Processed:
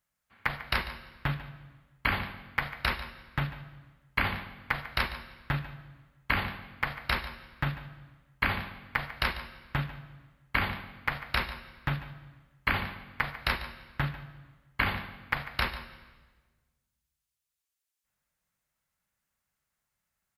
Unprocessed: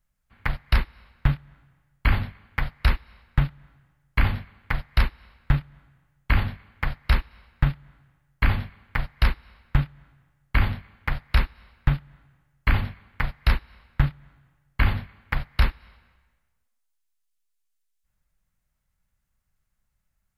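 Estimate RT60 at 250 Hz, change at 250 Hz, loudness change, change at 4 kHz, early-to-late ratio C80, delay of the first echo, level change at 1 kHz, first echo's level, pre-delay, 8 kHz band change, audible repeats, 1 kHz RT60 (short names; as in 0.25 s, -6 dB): 1.7 s, -6.0 dB, -5.5 dB, +0.5 dB, 11.5 dB, 0.145 s, 0.0 dB, -15.0 dB, 31 ms, n/a, 1, 1.2 s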